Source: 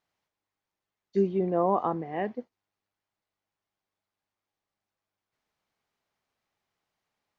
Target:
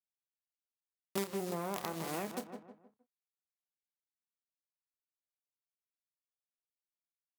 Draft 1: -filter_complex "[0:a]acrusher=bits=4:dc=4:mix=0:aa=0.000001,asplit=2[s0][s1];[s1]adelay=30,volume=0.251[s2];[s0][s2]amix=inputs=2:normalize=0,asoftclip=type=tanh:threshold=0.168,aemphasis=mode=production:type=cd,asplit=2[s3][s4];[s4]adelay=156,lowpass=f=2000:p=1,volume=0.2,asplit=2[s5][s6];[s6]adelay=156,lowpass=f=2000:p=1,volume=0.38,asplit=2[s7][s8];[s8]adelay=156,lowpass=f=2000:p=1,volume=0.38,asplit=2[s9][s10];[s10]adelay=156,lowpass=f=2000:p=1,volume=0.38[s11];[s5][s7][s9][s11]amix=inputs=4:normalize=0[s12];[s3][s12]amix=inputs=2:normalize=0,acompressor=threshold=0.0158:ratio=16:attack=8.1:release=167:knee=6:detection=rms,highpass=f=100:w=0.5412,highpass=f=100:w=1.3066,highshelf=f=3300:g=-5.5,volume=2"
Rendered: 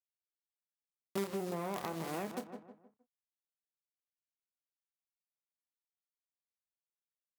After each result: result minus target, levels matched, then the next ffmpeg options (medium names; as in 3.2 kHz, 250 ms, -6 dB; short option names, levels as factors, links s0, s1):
saturation: distortion +16 dB; 8 kHz band -4.0 dB
-filter_complex "[0:a]acrusher=bits=4:dc=4:mix=0:aa=0.000001,asplit=2[s0][s1];[s1]adelay=30,volume=0.251[s2];[s0][s2]amix=inputs=2:normalize=0,asoftclip=type=tanh:threshold=0.531,aemphasis=mode=production:type=cd,asplit=2[s3][s4];[s4]adelay=156,lowpass=f=2000:p=1,volume=0.2,asplit=2[s5][s6];[s6]adelay=156,lowpass=f=2000:p=1,volume=0.38,asplit=2[s7][s8];[s8]adelay=156,lowpass=f=2000:p=1,volume=0.38,asplit=2[s9][s10];[s10]adelay=156,lowpass=f=2000:p=1,volume=0.38[s11];[s5][s7][s9][s11]amix=inputs=4:normalize=0[s12];[s3][s12]amix=inputs=2:normalize=0,acompressor=threshold=0.0158:ratio=16:attack=8.1:release=167:knee=6:detection=rms,highpass=f=100:w=0.5412,highpass=f=100:w=1.3066,highshelf=f=3300:g=-5.5,volume=2"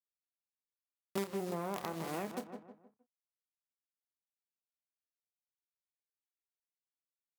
8 kHz band -4.0 dB
-filter_complex "[0:a]acrusher=bits=4:dc=4:mix=0:aa=0.000001,asplit=2[s0][s1];[s1]adelay=30,volume=0.251[s2];[s0][s2]amix=inputs=2:normalize=0,asoftclip=type=tanh:threshold=0.531,aemphasis=mode=production:type=cd,asplit=2[s3][s4];[s4]adelay=156,lowpass=f=2000:p=1,volume=0.2,asplit=2[s5][s6];[s6]adelay=156,lowpass=f=2000:p=1,volume=0.38,asplit=2[s7][s8];[s8]adelay=156,lowpass=f=2000:p=1,volume=0.38,asplit=2[s9][s10];[s10]adelay=156,lowpass=f=2000:p=1,volume=0.38[s11];[s5][s7][s9][s11]amix=inputs=4:normalize=0[s12];[s3][s12]amix=inputs=2:normalize=0,acompressor=threshold=0.0158:ratio=16:attack=8.1:release=167:knee=6:detection=rms,highpass=f=100:w=0.5412,highpass=f=100:w=1.3066,volume=2"